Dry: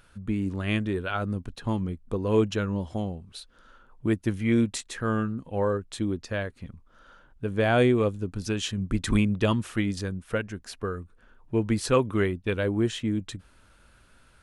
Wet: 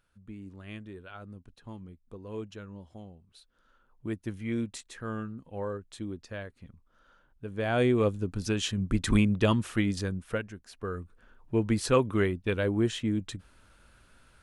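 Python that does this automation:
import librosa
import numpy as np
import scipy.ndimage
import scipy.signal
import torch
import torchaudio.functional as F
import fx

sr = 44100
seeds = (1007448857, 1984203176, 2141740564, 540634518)

y = fx.gain(x, sr, db=fx.line((3.08, -16.0), (4.17, -9.0), (7.51, -9.0), (8.07, -0.5), (10.22, -0.5), (10.68, -10.5), (10.95, -1.5)))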